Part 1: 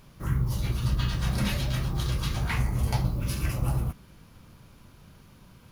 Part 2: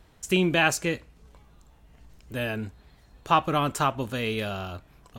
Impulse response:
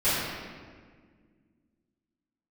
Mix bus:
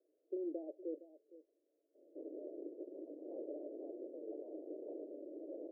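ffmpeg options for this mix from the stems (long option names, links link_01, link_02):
-filter_complex "[0:a]adelay=1950,volume=0dB,asplit=2[link_01][link_02];[link_02]volume=-19dB[link_03];[1:a]volume=-11.5dB,asplit=2[link_04][link_05];[link_05]volume=-18.5dB[link_06];[link_03][link_06]amix=inputs=2:normalize=0,aecho=0:1:463:1[link_07];[link_01][link_04][link_07]amix=inputs=3:normalize=0,asoftclip=type=tanh:threshold=-31dB,asuperpass=centerf=430:order=12:qfactor=1.3"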